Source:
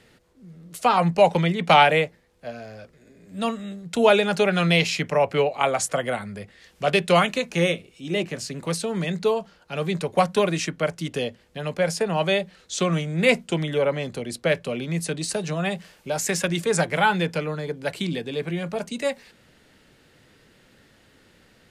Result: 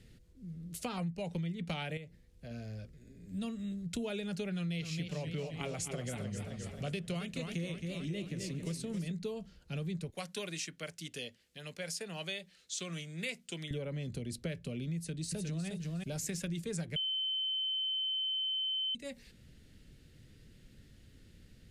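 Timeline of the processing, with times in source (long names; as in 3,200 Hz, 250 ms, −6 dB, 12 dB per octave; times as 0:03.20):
0:01.97–0:02.51: downward compressor 2 to 1, threshold −35 dBFS
0:04.55–0:09.12: feedback echo with a swinging delay time 264 ms, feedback 56%, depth 118 cents, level −8.5 dB
0:10.10–0:13.71: high-pass filter 1,200 Hz 6 dB per octave
0:14.96–0:15.67: delay throw 360 ms, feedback 15%, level −5.5 dB
0:16.96–0:18.95: beep over 3,070 Hz −8.5 dBFS
whole clip: guitar amp tone stack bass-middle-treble 10-0-1; downward compressor, threshold −50 dBFS; level +14.5 dB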